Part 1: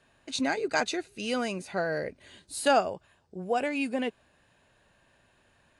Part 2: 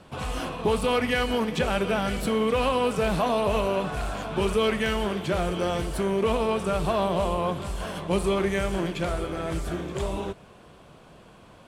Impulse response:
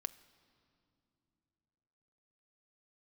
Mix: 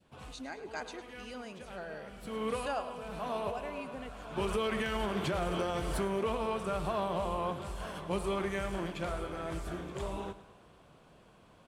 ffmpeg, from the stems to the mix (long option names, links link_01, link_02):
-filter_complex "[0:a]volume=-15.5dB,asplit=3[link_01][link_02][link_03];[link_02]volume=-14.5dB[link_04];[1:a]volume=-2dB,afade=type=in:start_time=2.05:duration=0.55:silence=0.421697,afade=type=in:start_time=4.08:duration=0.64:silence=0.446684,afade=type=out:start_time=5.78:duration=0.6:silence=0.421697,asplit=2[link_05][link_06];[link_06]volume=-15dB[link_07];[link_03]apad=whole_len=515022[link_08];[link_05][link_08]sidechaincompress=threshold=-53dB:ratio=8:attack=11:release=523[link_09];[link_04][link_07]amix=inputs=2:normalize=0,aecho=0:1:106|212|318|424|530|636|742:1|0.48|0.23|0.111|0.0531|0.0255|0.0122[link_10];[link_01][link_09][link_10]amix=inputs=3:normalize=0,adynamicequalizer=threshold=0.00447:dfrequency=1100:dqfactor=0.94:tfrequency=1100:tqfactor=0.94:attack=5:release=100:ratio=0.375:range=2:mode=boostabove:tftype=bell,alimiter=limit=-23.5dB:level=0:latency=1:release=120"